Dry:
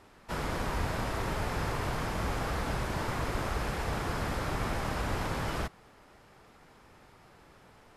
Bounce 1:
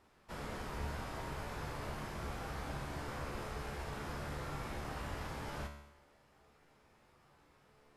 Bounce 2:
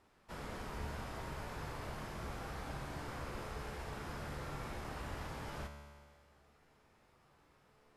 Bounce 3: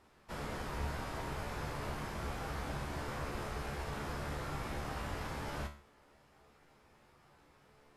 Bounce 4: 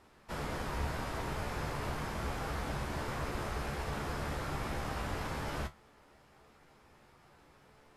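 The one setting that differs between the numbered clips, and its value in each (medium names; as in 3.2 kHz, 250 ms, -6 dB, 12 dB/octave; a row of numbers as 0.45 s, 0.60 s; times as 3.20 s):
feedback comb, decay: 0.86 s, 1.8 s, 0.41 s, 0.17 s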